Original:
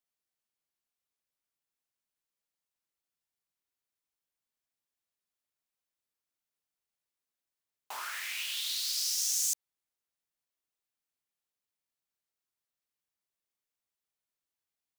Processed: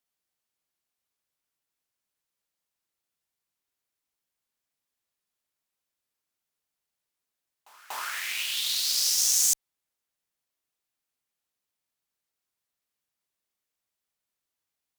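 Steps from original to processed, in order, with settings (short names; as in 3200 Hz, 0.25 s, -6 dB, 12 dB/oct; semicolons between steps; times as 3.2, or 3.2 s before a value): pre-echo 0.239 s -19 dB; added harmonics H 7 -26 dB, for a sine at -18 dBFS; gain +8 dB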